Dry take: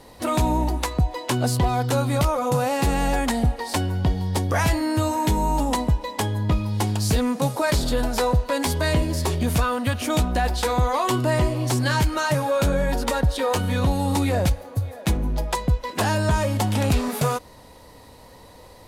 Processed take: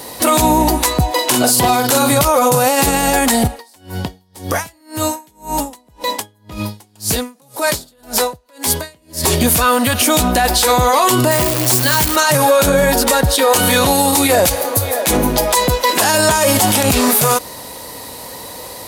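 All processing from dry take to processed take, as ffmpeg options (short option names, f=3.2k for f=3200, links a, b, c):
-filter_complex "[0:a]asettb=1/sr,asplit=3[a][b][c];[a]atrim=end=1.114[d];[b]atrim=start=1.11:end=2.12,asetpts=PTS-STARTPTS,afade=t=in:d=0.004:c=qsin,afade=t=out:st=1.006:d=0.004:c=qsin,highpass=f=170:p=1,asplit=2[e][f];[f]adelay=44,volume=-5dB[g];[e][g]amix=inputs=2:normalize=0,atrim=end_sample=44541[h];[c]atrim=start=2.116[i];[d][h]acrossfade=d=0.004:c1=hsin:c2=qsin[j];[j][i]acrossfade=d=0.004:c1=qsin:c2=hsin,asettb=1/sr,asplit=3[k][l][m];[k]atrim=end=3.474[n];[l]atrim=start=3.47:end=9.24,asetpts=PTS-STARTPTS,afade=t=in:d=0.004:c=qsin,afade=t=out:st=5.766:d=0.004:c=qsin,acompressor=threshold=-27dB:ratio=3:attack=3.2:release=140:knee=1:detection=peak,aeval=exprs='val(0)*pow(10,-36*(0.5-0.5*cos(2*PI*1.9*n/s))/20)':c=same[o];[m]atrim=start=9.236[p];[n][o]acrossfade=d=0.004:c1=hsin:c2=qsin[q];[q][p]acrossfade=d=0.004:c1=qsin:c2=hsin,asettb=1/sr,asplit=3[r][s][t];[r]atrim=end=11.314[u];[s]atrim=start=11.31:end=12.16,asetpts=PTS-STARTPTS,afade=t=in:d=0.004:c=qsin,afade=t=out:st=0.846:d=0.004:c=qsin,acrusher=bits=6:dc=4:mix=0:aa=0.000001,bandreject=f=50:t=h:w=6,bandreject=f=100:t=h:w=6,bandreject=f=150:t=h:w=6,bandreject=f=200:t=h:w=6,bandreject=f=250:t=h:w=6,bandreject=f=300:t=h:w=6,bandreject=f=350:t=h:w=6,bandreject=f=400:t=h:w=6,bandreject=f=450:t=h:w=6[v];[t]atrim=start=12.156[w];[u][v]acrossfade=d=0.004:c1=hsin:c2=qsin[x];[x][w]acrossfade=d=0.004:c1=qsin:c2=hsin,asettb=1/sr,asplit=3[y][z][aa];[y]atrim=end=13.564[ab];[z]atrim=start=13.56:end=16.83,asetpts=PTS-STARTPTS,afade=t=in:d=0.004:c=qsin,afade=t=out:st=3.266:d=0.004:c=qsin,bass=f=250:g=-8,treble=f=4k:g=1,acontrast=51[ac];[aa]atrim=start=16.826[ad];[ab][ac]acrossfade=d=0.004:c1=hsin:c2=qsin[ae];[ae][ad]acrossfade=d=0.004:c1=qsin:c2=hsin,highpass=f=210:p=1,aemphasis=mode=production:type=50kf,alimiter=level_in=17dB:limit=-1dB:release=50:level=0:latency=1,volume=-2.5dB"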